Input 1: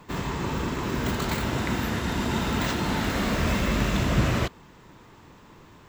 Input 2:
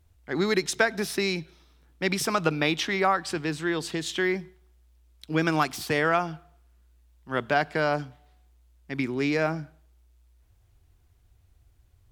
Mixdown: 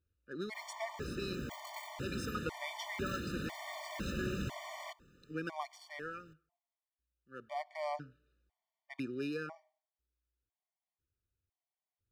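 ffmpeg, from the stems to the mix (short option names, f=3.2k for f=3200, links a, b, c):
-filter_complex "[0:a]equalizer=f=11k:w=5.4:g=3,bandreject=f=50:t=h:w=6,bandreject=f=100:t=h:w=6,adelay=450,volume=-12.5dB[a];[1:a]adynamicsmooth=sensitivity=7.5:basefreq=4.4k,lowshelf=f=100:g=-12,volume=-1dB,afade=t=out:st=5.61:d=0.67:silence=0.421697,afade=t=in:st=7.33:d=0.6:silence=0.237137,afade=t=out:st=9.05:d=0.78:silence=0.251189[b];[a][b]amix=inputs=2:normalize=0,afftfilt=real='re*gt(sin(2*PI*1*pts/sr)*(1-2*mod(floor(b*sr/1024/600),2)),0)':imag='im*gt(sin(2*PI*1*pts/sr)*(1-2*mod(floor(b*sr/1024/600),2)),0)':win_size=1024:overlap=0.75"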